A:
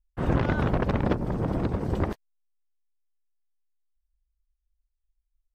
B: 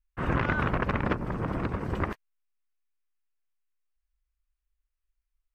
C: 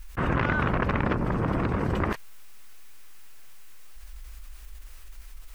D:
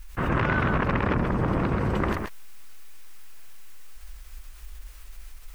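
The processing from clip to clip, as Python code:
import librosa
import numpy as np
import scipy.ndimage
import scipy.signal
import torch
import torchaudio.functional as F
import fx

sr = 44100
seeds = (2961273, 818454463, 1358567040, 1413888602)

y1 = fx.band_shelf(x, sr, hz=1700.0, db=8.5, octaves=1.7)
y1 = F.gain(torch.from_numpy(y1), -4.0).numpy()
y2 = fx.env_flatten(y1, sr, amount_pct=70)
y3 = y2 + 10.0 ** (-4.5 / 20.0) * np.pad(y2, (int(131 * sr / 1000.0), 0))[:len(y2)]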